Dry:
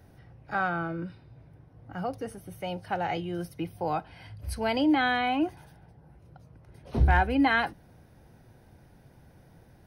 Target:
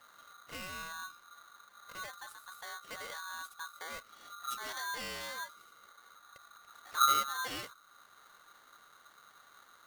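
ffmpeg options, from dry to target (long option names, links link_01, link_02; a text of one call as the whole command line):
ffmpeg -i in.wav -filter_complex "[0:a]acrossover=split=180|3000[link_01][link_02][link_03];[link_02]acompressor=threshold=-50dB:ratio=2[link_04];[link_01][link_04][link_03]amix=inputs=3:normalize=0,aeval=exprs='val(0)*sgn(sin(2*PI*1300*n/s))':channel_layout=same,volume=-5dB" out.wav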